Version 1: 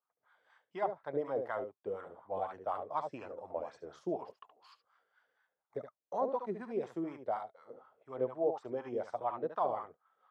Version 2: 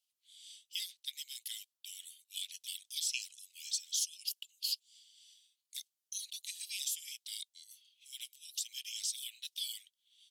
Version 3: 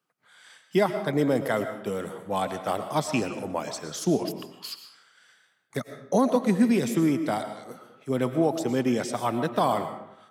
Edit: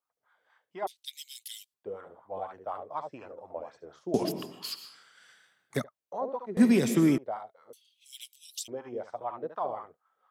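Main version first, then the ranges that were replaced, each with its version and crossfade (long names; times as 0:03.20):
1
0:00.87–0:01.74: punch in from 2
0:04.14–0:05.84: punch in from 3
0:06.57–0:07.18: punch in from 3
0:07.73–0:08.68: punch in from 2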